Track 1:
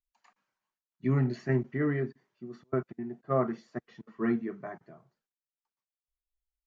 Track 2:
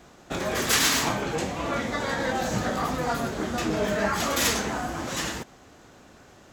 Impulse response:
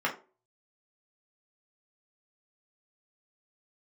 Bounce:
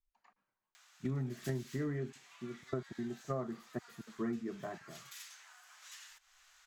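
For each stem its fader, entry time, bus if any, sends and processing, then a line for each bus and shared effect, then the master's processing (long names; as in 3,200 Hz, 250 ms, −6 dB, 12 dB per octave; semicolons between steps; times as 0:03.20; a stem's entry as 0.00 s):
−2.0 dB, 0.00 s, no send, high-shelf EQ 3,300 Hz −11.5 dB
−11.5 dB, 0.75 s, no send, downward compressor 6 to 1, threshold −35 dBFS, peak gain reduction 16 dB; Bessel high-pass filter 1,800 Hz, order 4; upward compression, threshold −45 dBFS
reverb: not used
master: low-shelf EQ 65 Hz +11 dB; downward compressor 6 to 1, threshold −34 dBFS, peak gain reduction 11 dB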